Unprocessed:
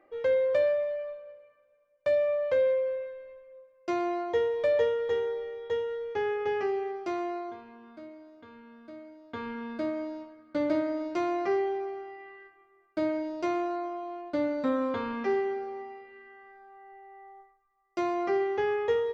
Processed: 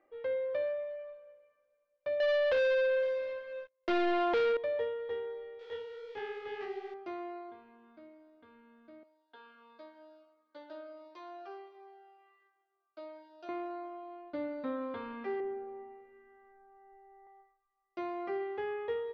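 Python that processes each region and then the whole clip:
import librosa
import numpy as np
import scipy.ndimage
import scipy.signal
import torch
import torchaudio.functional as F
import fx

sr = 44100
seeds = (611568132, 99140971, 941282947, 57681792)

y = fx.chain(x, sr, fx.highpass(hz=93.0, slope=12),
    fx.leveller(passes=5), at=(2.2, 4.57))
y = fx.chain(y, sr, fx.zero_step(step_db=-42.0),
    fx.high_shelf(hz=2500.0, db=11.5),
    fx.detune_double(cents=60), at=(5.59, 6.94))
y = fx.chain(y, sr, fx.highpass(hz=760.0, slope=12),
    fx.peak_eq(hz=2100.0, db=-11.5, octaves=0.48),
    fx.notch_cascade(direction='falling', hz=1.5), at=(9.03, 13.49))
y = fx.chain(y, sr, fx.lowpass(hz=1600.0, slope=6),
    fx.tilt_eq(slope=-2.0), at=(15.4, 17.27))
y = scipy.signal.sosfilt(scipy.signal.butter(4, 4100.0, 'lowpass', fs=sr, output='sos'), y)
y = fx.peak_eq(y, sr, hz=120.0, db=-5.0, octaves=1.1)
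y = y * 10.0 ** (-8.5 / 20.0)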